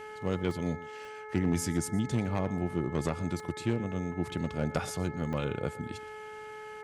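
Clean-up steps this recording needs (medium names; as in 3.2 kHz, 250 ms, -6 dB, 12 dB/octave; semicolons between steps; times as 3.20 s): clip repair -19.5 dBFS; de-hum 428.5 Hz, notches 5; interpolate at 0.51/1.05/3.40/5.33 s, 1.2 ms; inverse comb 118 ms -19 dB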